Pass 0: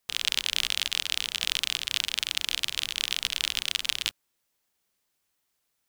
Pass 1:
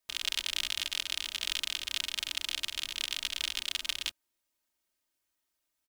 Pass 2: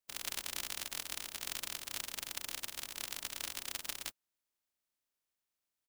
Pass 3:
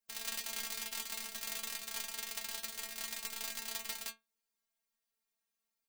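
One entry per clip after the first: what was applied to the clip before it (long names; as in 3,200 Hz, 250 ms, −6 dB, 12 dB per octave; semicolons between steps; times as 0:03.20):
comb filter 3.2 ms, depth 76%; level −7.5 dB
compressing power law on the bin magnitudes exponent 0.26; level −7 dB
stiff-string resonator 220 Hz, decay 0.22 s, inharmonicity 0.002; level +12 dB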